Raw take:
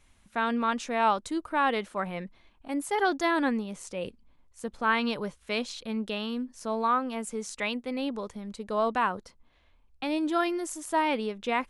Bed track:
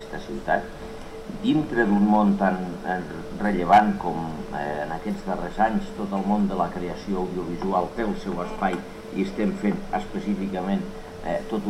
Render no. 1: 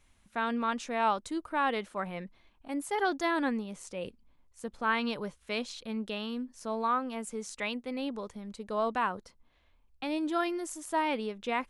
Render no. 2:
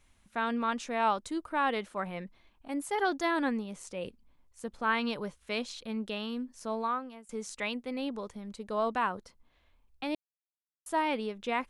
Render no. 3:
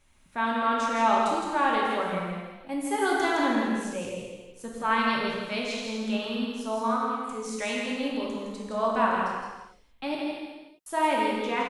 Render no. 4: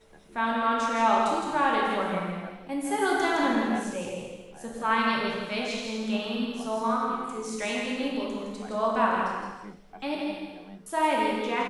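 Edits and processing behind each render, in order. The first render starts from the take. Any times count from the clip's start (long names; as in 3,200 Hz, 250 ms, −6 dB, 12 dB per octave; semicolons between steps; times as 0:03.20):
level −3.5 dB
0:06.73–0:07.29: fade out, to −23.5 dB; 0:10.15–0:10.86: silence
on a send: single-tap delay 164 ms −5 dB; on the sum: reverb whose tail is shaped and stops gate 490 ms falling, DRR −3 dB
mix in bed track −21 dB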